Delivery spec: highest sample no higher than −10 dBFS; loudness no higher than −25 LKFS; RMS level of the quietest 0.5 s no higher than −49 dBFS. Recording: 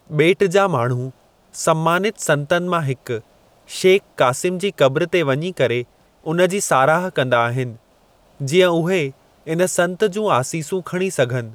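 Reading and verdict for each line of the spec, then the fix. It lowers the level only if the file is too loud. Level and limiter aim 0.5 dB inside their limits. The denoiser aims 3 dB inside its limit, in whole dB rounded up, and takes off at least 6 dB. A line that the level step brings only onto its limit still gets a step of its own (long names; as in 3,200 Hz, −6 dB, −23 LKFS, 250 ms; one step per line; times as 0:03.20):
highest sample −4.0 dBFS: out of spec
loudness −18.5 LKFS: out of spec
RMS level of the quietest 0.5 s −55 dBFS: in spec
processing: level −7 dB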